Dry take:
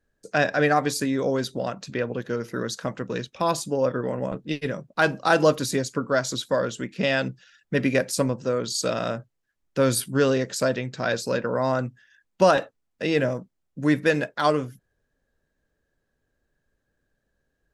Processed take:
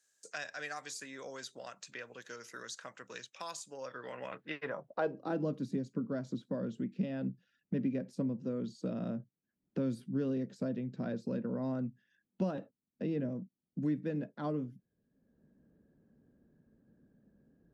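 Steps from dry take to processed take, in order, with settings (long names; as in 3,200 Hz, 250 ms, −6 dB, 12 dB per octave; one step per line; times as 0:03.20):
band-pass filter sweep 7,200 Hz → 210 Hz, 0:03.77–0:05.43
multiband upward and downward compressor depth 70%
level −2.5 dB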